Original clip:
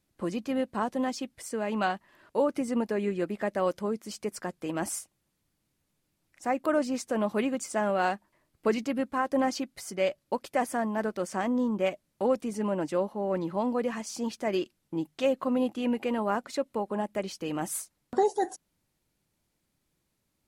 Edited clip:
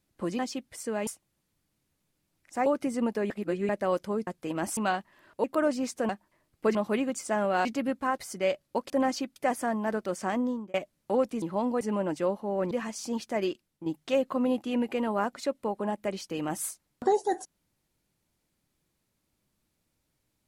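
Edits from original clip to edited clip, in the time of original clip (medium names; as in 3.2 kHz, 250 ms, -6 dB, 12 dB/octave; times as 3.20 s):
0.39–1.05 s: delete
1.73–2.40 s: swap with 4.96–6.55 s
3.04–3.43 s: reverse
4.01–4.46 s: delete
8.10–8.76 s: move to 7.20 s
9.29–9.75 s: move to 10.47 s
11.50–11.85 s: fade out
13.43–13.82 s: move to 12.53 s
14.49–14.97 s: fade out, to -7.5 dB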